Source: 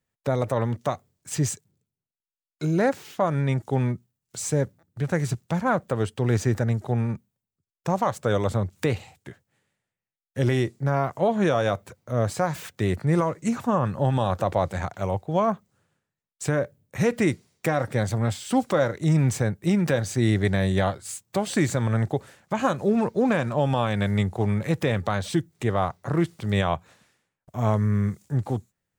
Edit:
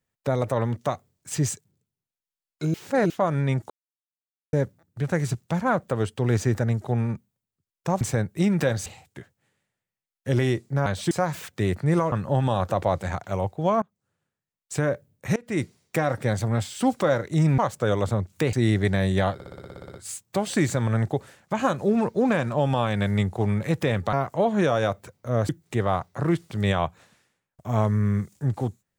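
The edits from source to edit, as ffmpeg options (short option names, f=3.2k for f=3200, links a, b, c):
-filter_complex "[0:a]asplit=26[a][b][c][d][e][f][g][h][i][j][k][l][m][n][o][p][q][r][s][t][u][v][w][x][y][z];[a]atrim=end=2.742[aa];[b]atrim=start=2.738:end=3.102,asetpts=PTS-STARTPTS,areverse[ab];[c]atrim=start=3.098:end=3.7,asetpts=PTS-STARTPTS,afade=t=out:st=0.598:d=0.004:c=hsin[ac];[d]atrim=start=3.7:end=4.53,asetpts=PTS-STARTPTS,volume=0[ad];[e]atrim=start=4.53:end=8.012,asetpts=PTS-STARTPTS,afade=t=in:d=0.004:c=hsin[ae];[f]atrim=start=19.278:end=20.132[af];[g]atrim=start=8.958:end=10.962[ag];[h]atrim=start=25.128:end=25.382[ah];[i]atrim=start=12.318:end=13.332[ai];[j]atrim=start=13.818:end=15.52,asetpts=PTS-STARTPTS,afade=t=out:st=1.698:d=0.004:c=hsin:silence=0.0749894[aj];[k]atrim=start=15.52:end=17.06,asetpts=PTS-STARTPTS,afade=t=in:d=1.02:silence=0.0749894,afade=t=out:st=1.536:d=0.004:c=hsin:silence=0.0794328[ak];[l]atrim=start=17.06:end=19.282,asetpts=PTS-STARTPTS,afade=t=in:d=0.26:c=qua:silence=0.0794328[al];[m]atrim=start=8.008:end=8.962[am];[n]atrim=start=20.128:end=21.002[an];[o]atrim=start=20.938:end=21.002[ao];[p]atrim=start=20.938:end=21.002[ap];[q]atrim=start=20.938:end=21.002[aq];[r]atrim=start=20.938:end=21.002[ar];[s]atrim=start=20.938:end=21.002[as];[t]atrim=start=20.938:end=21.002[at];[u]atrim=start=20.938:end=21.002[au];[v]atrim=start=20.938:end=21.002[av];[w]atrim=start=20.938:end=21.002[aw];[x]atrim=start=20.938:end=25.132[ax];[y]atrim=start=10.958:end=12.322[ay];[z]atrim=start=25.378[az];[aa][ab]acrossfade=d=0.004:c1=hsin:c2=hsin[ba];[ac][ad][ae]concat=n=3:v=0:a=1[bb];[ba][bb]acrossfade=d=0.004:c1=hsin:c2=hsin[bc];[bc][af]acrossfade=d=0.004:c1=hsin:c2=hsin[bd];[bd][ag]acrossfade=d=0.004:c1=hsin:c2=hsin[be];[be][ah]acrossfade=d=0.004:c1=hsin:c2=hsin[bf];[bf][ai]acrossfade=d=0.004:c1=hsin:c2=hsin[bg];[aj][ak][al]concat=n=3:v=0:a=1[bh];[bg][bh]acrossfade=d=0.004:c1=hsin:c2=hsin[bi];[bi][am]acrossfade=d=0.004:c1=hsin:c2=hsin[bj];[bj][an]acrossfade=d=0.004:c1=hsin:c2=hsin[bk];[bk][ao]acrossfade=d=0.004:c1=hsin:c2=hsin[bl];[bl][ap]acrossfade=d=0.004:c1=hsin:c2=hsin[bm];[bm][aq]acrossfade=d=0.004:c1=hsin:c2=hsin[bn];[bn][ar]acrossfade=d=0.004:c1=hsin:c2=hsin[bo];[bo][as]acrossfade=d=0.004:c1=hsin:c2=hsin[bp];[bp][at]acrossfade=d=0.004:c1=hsin:c2=hsin[bq];[bq][au]acrossfade=d=0.004:c1=hsin:c2=hsin[br];[br][av]acrossfade=d=0.004:c1=hsin:c2=hsin[bs];[bs][aw]acrossfade=d=0.004:c1=hsin:c2=hsin[bt];[bt][ax]acrossfade=d=0.004:c1=hsin:c2=hsin[bu];[bu][ay]acrossfade=d=0.004:c1=hsin:c2=hsin[bv];[bv][az]acrossfade=d=0.004:c1=hsin:c2=hsin"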